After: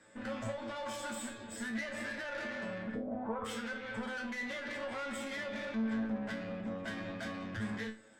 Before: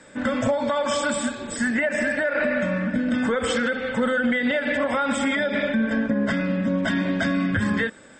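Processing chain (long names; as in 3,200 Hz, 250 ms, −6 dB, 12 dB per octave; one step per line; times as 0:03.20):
tube saturation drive 25 dB, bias 0.5
0:02.94–0:03.44: low-pass with resonance 440 Hz → 1,100 Hz, resonance Q 4.9
tuned comb filter 110 Hz, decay 0.28 s, harmonics all, mix 90%
level −2 dB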